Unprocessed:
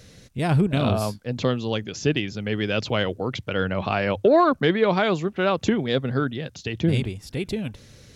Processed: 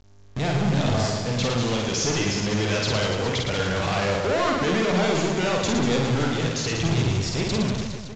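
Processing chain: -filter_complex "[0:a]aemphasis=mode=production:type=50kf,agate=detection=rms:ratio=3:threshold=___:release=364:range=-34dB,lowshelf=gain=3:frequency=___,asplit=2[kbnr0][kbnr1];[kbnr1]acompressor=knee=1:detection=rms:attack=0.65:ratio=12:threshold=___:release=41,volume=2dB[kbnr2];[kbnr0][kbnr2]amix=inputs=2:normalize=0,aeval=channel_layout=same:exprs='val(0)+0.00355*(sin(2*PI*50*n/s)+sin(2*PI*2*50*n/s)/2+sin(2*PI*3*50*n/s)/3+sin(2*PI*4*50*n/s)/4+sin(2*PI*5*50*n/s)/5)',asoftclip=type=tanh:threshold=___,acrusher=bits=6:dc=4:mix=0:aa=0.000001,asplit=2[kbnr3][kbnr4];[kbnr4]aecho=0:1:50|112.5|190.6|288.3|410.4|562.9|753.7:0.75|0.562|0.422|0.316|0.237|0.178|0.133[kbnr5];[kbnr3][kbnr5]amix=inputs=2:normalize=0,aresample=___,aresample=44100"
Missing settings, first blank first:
-33dB, 110, -29dB, -22.5dB, 16000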